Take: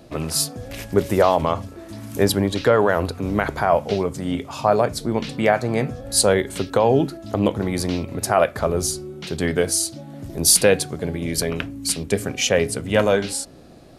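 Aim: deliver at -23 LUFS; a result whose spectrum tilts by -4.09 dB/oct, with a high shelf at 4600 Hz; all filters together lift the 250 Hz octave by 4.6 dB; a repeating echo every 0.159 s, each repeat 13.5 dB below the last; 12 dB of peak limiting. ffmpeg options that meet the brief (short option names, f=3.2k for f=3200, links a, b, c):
-af "equalizer=f=250:t=o:g=6,highshelf=f=4.6k:g=7,alimiter=limit=-9dB:level=0:latency=1,aecho=1:1:159|318:0.211|0.0444,volume=-2dB"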